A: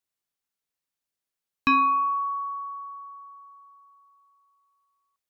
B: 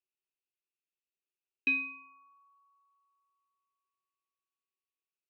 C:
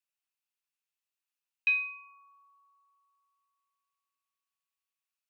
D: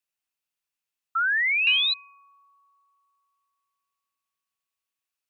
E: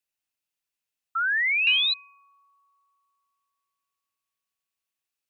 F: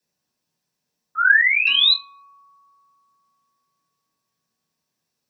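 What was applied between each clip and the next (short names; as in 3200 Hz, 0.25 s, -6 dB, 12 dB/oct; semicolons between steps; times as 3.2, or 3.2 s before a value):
double band-pass 990 Hz, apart 2.8 oct
HPF 840 Hz 24 dB/oct; gain +2.5 dB
painted sound rise, 1.15–1.94, 1300–4100 Hz -26 dBFS; gain +3 dB
bell 1100 Hz -3 dB
reverb RT60 0.20 s, pre-delay 7 ms, DRR -3.5 dB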